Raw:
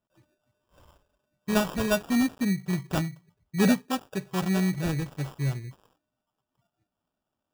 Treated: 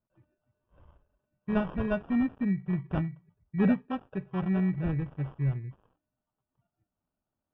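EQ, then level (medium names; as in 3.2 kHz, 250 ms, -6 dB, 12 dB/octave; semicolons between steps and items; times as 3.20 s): Savitzky-Golay filter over 25 samples; distance through air 320 m; bass shelf 150 Hz +8 dB; -4.5 dB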